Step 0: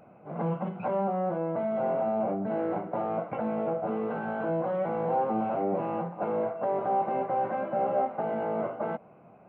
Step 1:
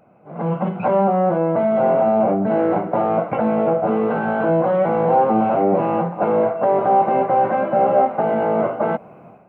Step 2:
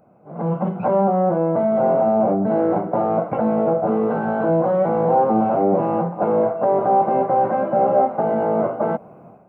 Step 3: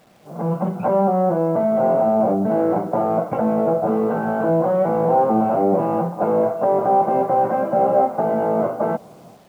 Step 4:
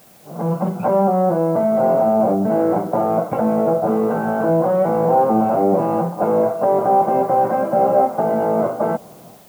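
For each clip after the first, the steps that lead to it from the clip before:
automatic gain control gain up to 12 dB
parametric band 2,600 Hz −10 dB 1.5 octaves
bit reduction 9 bits
background noise blue −52 dBFS; level +1.5 dB

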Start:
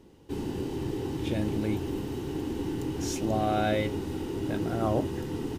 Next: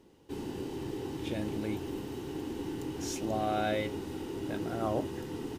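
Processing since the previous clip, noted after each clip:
low-shelf EQ 190 Hz −7 dB
level −3 dB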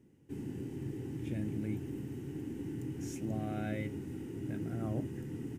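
octave-band graphic EQ 125/250/500/1,000/2,000/4,000/8,000 Hz +12/+6/−3/−9/+6/−12/+3 dB
level −8 dB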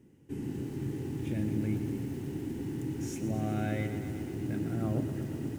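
feedback echo at a low word length 121 ms, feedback 80%, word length 9 bits, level −11 dB
level +4 dB

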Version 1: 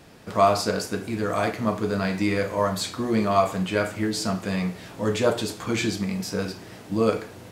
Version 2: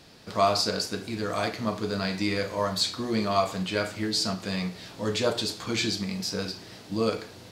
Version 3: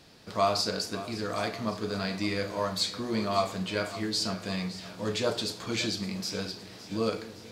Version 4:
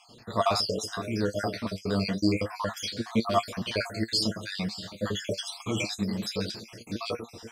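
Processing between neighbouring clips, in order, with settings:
parametric band 4,400 Hz +10.5 dB 0.99 octaves; every ending faded ahead of time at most 220 dB per second; level −4.5 dB
echo with a time of its own for lows and highs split 440 Hz, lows 218 ms, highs 563 ms, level −15 dB; level −3 dB
time-frequency cells dropped at random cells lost 57%; flanger 0.28 Hz, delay 8.3 ms, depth 2 ms, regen +44%; level +8.5 dB

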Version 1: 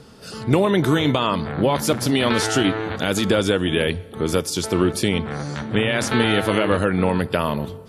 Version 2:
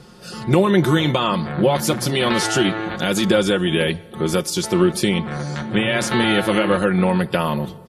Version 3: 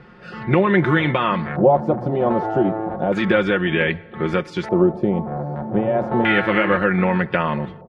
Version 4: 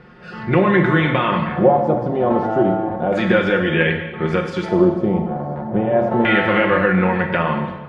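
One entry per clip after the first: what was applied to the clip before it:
comb filter 5.6 ms, depth 65%
auto-filter low-pass square 0.32 Hz 740–2,000 Hz; level −1.5 dB
dense smooth reverb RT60 1.2 s, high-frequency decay 0.9×, DRR 3.5 dB

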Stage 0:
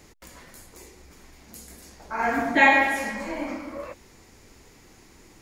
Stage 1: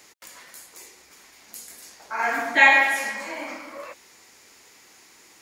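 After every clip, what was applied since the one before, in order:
high-pass filter 1,300 Hz 6 dB per octave
level +5 dB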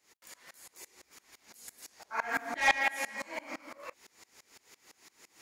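soft clipping −14.5 dBFS, distortion −10 dB
tremolo with a ramp in dB swelling 5.9 Hz, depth 25 dB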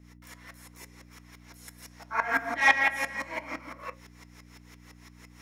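mains hum 60 Hz, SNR 15 dB
convolution reverb RT60 0.30 s, pre-delay 3 ms, DRR 10 dB

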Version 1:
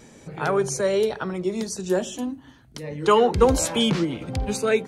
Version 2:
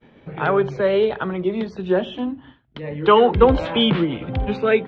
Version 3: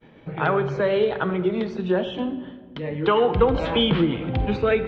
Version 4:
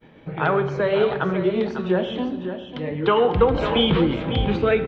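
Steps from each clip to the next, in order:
Chebyshev low-pass filter 3,400 Hz, order 4; downward expander −44 dBFS; level +4.5 dB
downward compressor 3 to 1, threshold −17 dBFS, peak gain reduction 8 dB; rectangular room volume 1,900 cubic metres, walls mixed, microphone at 0.61 metres
flanger 1.7 Hz, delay 9.3 ms, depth 3.9 ms, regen −89%; on a send: single-tap delay 549 ms −9.5 dB; on the sum: level +5.5 dB

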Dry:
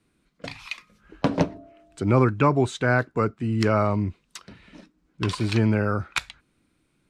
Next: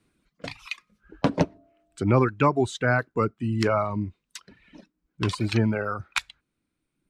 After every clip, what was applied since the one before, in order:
reverb reduction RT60 1.4 s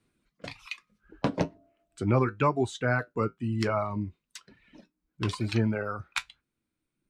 flanger 1.1 Hz, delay 7.9 ms, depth 1.6 ms, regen −64%

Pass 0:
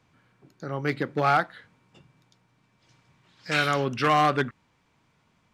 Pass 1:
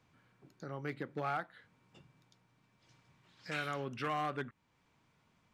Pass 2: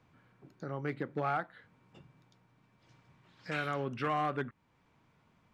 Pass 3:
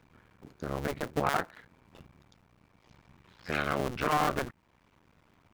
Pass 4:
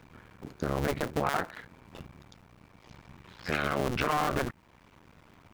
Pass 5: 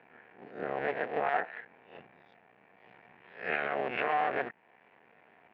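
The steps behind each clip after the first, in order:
dynamic equaliser 4,900 Hz, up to −6 dB, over −49 dBFS, Q 1.8; downward compressor 1.5 to 1, threshold −44 dBFS, peak gain reduction 10 dB; level −5.5 dB
high-shelf EQ 3,200 Hz −9.5 dB; level +4.5 dB
sub-harmonics by changed cycles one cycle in 2, muted; level +7 dB
brickwall limiter −24.5 dBFS, peak gain reduction 9.5 dB; level +7.5 dB
peak hold with a rise ahead of every peak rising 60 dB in 0.41 s; loudspeaker in its box 280–2,700 Hz, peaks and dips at 300 Hz −4 dB, 450 Hz +5 dB, 730 Hz +9 dB, 1,200 Hz −5 dB, 1,800 Hz +9 dB, 2,600 Hz +5 dB; level −6 dB

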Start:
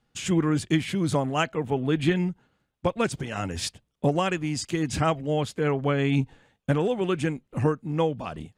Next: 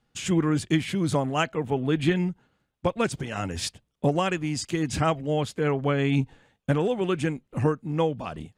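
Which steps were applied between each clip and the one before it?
no processing that can be heard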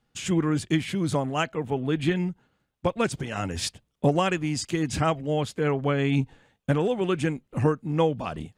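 speech leveller within 4 dB 2 s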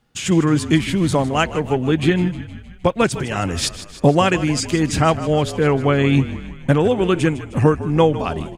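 echo with shifted repeats 155 ms, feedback 60%, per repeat −42 Hz, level −14 dB
level +8 dB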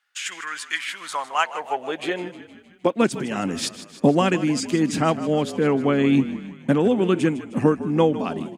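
high-pass filter sweep 1,600 Hz → 220 Hz, 0:00.78–0:03.18
level −5.5 dB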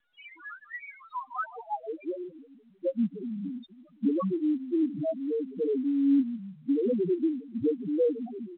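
spectral peaks only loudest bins 1
mu-law 64 kbit/s 8,000 Hz

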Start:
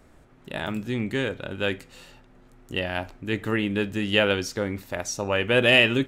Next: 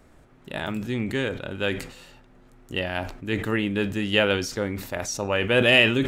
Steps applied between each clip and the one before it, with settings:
level that may fall only so fast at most 89 dB per second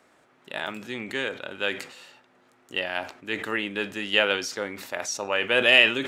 meter weighting curve A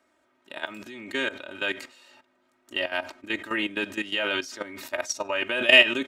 comb filter 3.2 ms, depth 79%
output level in coarse steps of 14 dB
level +1.5 dB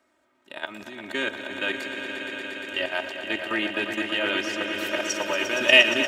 echo that builds up and dies away 117 ms, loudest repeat 5, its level −10 dB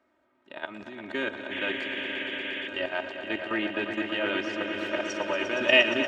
sound drawn into the spectrogram noise, 0:01.51–0:02.68, 1,600–3,500 Hz −31 dBFS
head-to-tape spacing loss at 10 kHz 21 dB

